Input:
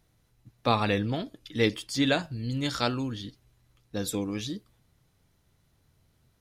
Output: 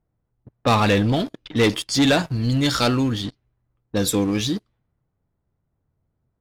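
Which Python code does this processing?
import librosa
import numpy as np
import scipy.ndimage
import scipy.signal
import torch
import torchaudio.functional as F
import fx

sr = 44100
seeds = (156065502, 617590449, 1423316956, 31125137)

y = fx.leveller(x, sr, passes=3)
y = fx.env_lowpass(y, sr, base_hz=1100.0, full_db=-20.0)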